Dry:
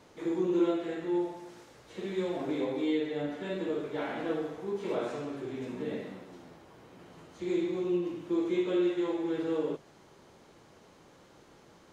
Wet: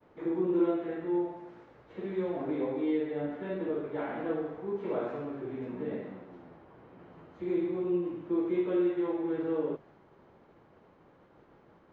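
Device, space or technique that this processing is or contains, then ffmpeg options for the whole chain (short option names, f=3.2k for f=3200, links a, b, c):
hearing-loss simulation: -af "lowpass=1.8k,agate=range=-33dB:threshold=-55dB:ratio=3:detection=peak"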